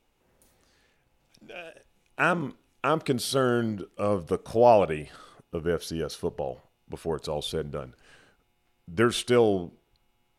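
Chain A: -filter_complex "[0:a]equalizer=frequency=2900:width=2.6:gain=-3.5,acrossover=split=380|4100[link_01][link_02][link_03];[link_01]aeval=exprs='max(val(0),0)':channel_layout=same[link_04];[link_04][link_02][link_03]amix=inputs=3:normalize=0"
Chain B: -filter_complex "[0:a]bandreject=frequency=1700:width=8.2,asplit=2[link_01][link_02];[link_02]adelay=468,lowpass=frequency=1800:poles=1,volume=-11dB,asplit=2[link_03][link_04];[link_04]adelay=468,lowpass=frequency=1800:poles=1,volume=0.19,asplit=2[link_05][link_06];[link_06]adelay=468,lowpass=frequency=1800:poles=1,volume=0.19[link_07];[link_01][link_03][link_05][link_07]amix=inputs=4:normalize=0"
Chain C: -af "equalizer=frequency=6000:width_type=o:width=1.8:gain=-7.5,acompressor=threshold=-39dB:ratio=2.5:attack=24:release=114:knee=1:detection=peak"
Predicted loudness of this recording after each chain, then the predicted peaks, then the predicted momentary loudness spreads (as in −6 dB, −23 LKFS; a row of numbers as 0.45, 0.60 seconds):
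−28.0, −27.0, −37.5 LKFS; −6.5, −6.5, −16.5 dBFS; 20, 19, 13 LU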